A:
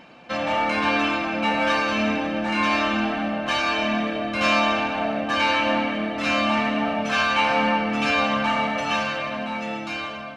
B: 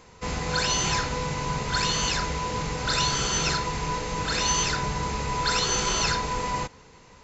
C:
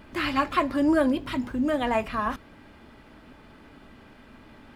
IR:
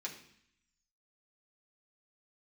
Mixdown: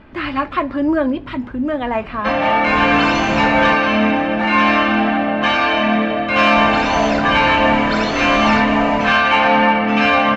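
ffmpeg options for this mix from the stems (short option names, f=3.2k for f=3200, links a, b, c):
-filter_complex "[0:a]adelay=1950,volume=1dB,asplit=2[a][b];[b]volume=-4.5dB[c];[1:a]adelay=2450,volume=-2.5dB,asplit=3[d][e][f];[d]atrim=end=3.74,asetpts=PTS-STARTPTS,afade=t=out:st=3.736:d=0.004:c=hsin[g];[e]atrim=start=3.74:end=6.55,asetpts=PTS-STARTPTS,volume=0[h];[f]atrim=start=6.55,asetpts=PTS-STARTPTS,afade=t=in:d=0.004:c=hsin[i];[g][h][i]concat=n=3:v=0:a=1,asplit=2[j][k];[k]volume=-7.5dB[l];[2:a]volume=-0.5dB[m];[3:a]atrim=start_sample=2205[n];[c][l]amix=inputs=2:normalize=0[o];[o][n]afir=irnorm=-1:irlink=0[p];[a][j][m][p]amix=inputs=4:normalize=0,lowpass=2.9k,acontrast=40"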